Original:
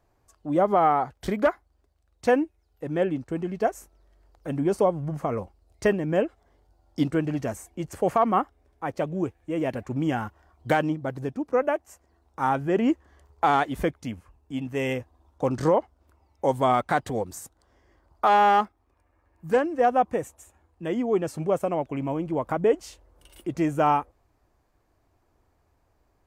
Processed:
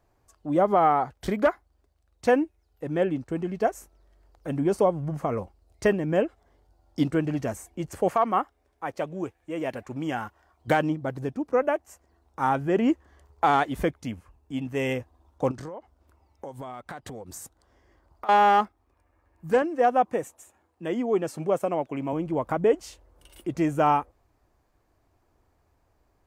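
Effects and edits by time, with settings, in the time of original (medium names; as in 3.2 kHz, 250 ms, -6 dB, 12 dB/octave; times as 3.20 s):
8.08–10.68 s: bass shelf 340 Hz -8.5 dB
15.51–18.29 s: compression 8:1, threshold -35 dBFS
19.62–22.13 s: Bessel high-pass 170 Hz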